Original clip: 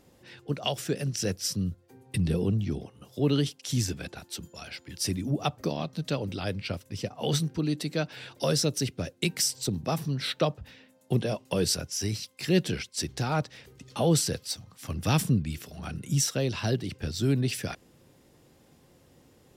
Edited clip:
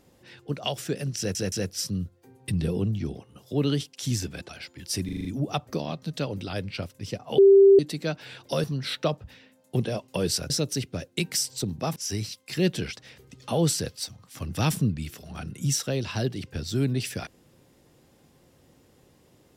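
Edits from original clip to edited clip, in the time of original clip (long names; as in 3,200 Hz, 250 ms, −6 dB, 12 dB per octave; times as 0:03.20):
0:01.18: stutter 0.17 s, 3 plays
0:04.15–0:04.60: remove
0:05.16: stutter 0.04 s, 6 plays
0:07.29–0:07.70: beep over 393 Hz −10.5 dBFS
0:08.55–0:10.01: move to 0:11.87
0:12.88–0:13.45: remove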